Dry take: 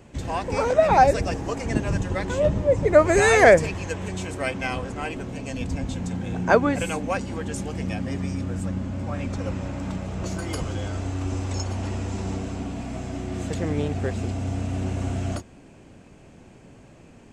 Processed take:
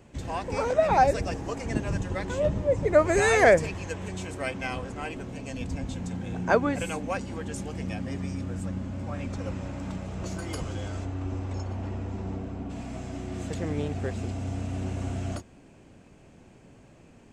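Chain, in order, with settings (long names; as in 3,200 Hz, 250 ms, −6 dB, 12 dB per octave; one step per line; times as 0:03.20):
0:11.04–0:12.69: low-pass filter 2,100 Hz → 1,200 Hz 6 dB per octave
level −4.5 dB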